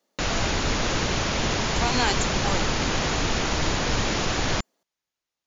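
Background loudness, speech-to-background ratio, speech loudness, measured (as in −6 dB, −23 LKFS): −25.0 LKFS, −4.0 dB, −29.0 LKFS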